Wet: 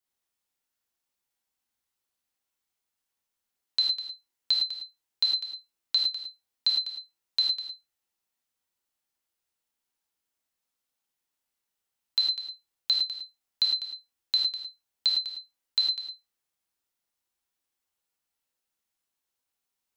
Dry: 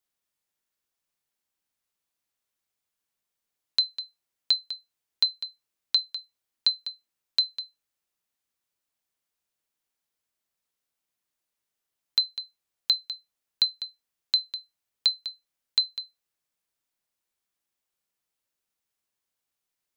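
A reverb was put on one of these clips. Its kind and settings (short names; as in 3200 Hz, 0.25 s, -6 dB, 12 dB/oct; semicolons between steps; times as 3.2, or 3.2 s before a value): non-linear reverb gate 0.13 s flat, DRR -1.5 dB; gain -4 dB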